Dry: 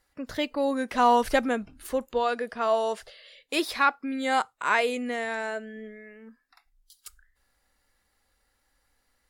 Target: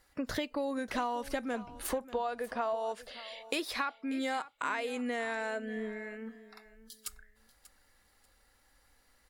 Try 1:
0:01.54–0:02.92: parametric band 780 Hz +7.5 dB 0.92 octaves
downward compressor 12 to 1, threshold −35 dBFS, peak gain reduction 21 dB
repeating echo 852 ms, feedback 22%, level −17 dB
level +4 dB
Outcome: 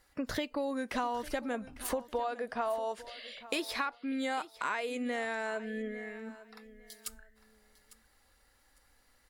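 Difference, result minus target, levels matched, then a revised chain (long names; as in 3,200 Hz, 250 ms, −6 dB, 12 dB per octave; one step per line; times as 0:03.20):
echo 263 ms late
0:01.54–0:02.92: parametric band 780 Hz +7.5 dB 0.92 octaves
downward compressor 12 to 1, threshold −35 dBFS, peak gain reduction 21 dB
repeating echo 589 ms, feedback 22%, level −17 dB
level +4 dB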